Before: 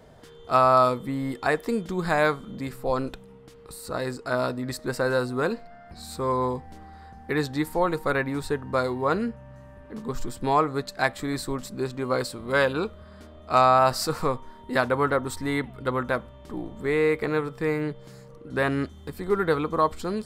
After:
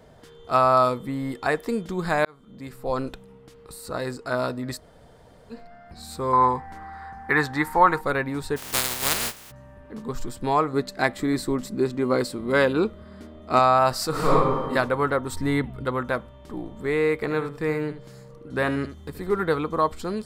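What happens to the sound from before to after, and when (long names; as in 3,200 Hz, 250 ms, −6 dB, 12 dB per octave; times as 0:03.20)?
0:02.25–0:02.99: fade in
0:04.79–0:05.54: fill with room tone, crossfade 0.10 s
0:06.33–0:08.01: flat-topped bell 1,300 Hz +11 dB
0:08.56–0:09.50: compressing power law on the bin magnitudes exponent 0.14
0:10.73–0:13.59: hollow resonant body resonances 230/340/2,000 Hz, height 7 dB, ringing for 25 ms
0:14.10–0:14.70: thrown reverb, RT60 1.3 s, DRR −8 dB
0:15.32–0:15.85: low-shelf EQ 290 Hz +7.5 dB
0:17.20–0:19.44: single-tap delay 77 ms −12 dB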